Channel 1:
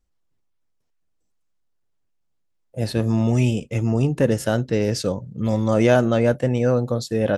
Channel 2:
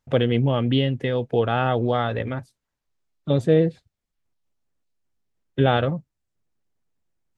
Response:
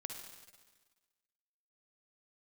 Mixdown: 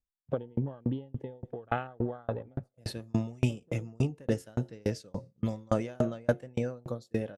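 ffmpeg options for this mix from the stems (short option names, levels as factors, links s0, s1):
-filter_complex "[0:a]bandreject=f=89.02:t=h:w=4,bandreject=f=178.04:t=h:w=4,bandreject=f=267.06:t=h:w=4,bandreject=f=356.08:t=h:w=4,bandreject=f=445.1:t=h:w=4,bandreject=f=534.12:t=h:w=4,bandreject=f=623.14:t=h:w=4,bandreject=f=712.16:t=h:w=4,bandreject=f=801.18:t=h:w=4,bandreject=f=890.2:t=h:w=4,volume=0.631,asplit=3[s0][s1][s2];[s1]volume=0.106[s3];[1:a]afwtdn=0.0355,lowshelf=f=210:g=-4,acompressor=threshold=0.0794:ratio=6,adelay=200,volume=1.26,asplit=2[s4][s5];[s5]volume=0.0794[s6];[s2]apad=whole_len=334001[s7];[s4][s7]sidechaincompress=threshold=0.00891:ratio=5:attack=6.6:release=190[s8];[2:a]atrim=start_sample=2205[s9];[s3][s6]amix=inputs=2:normalize=0[s10];[s10][s9]afir=irnorm=-1:irlink=0[s11];[s0][s8][s11]amix=inputs=3:normalize=0,agate=range=0.316:threshold=0.0126:ratio=16:detection=peak,aeval=exprs='val(0)*pow(10,-36*if(lt(mod(3.5*n/s,1),2*abs(3.5)/1000),1-mod(3.5*n/s,1)/(2*abs(3.5)/1000),(mod(3.5*n/s,1)-2*abs(3.5)/1000)/(1-2*abs(3.5)/1000))/20)':c=same"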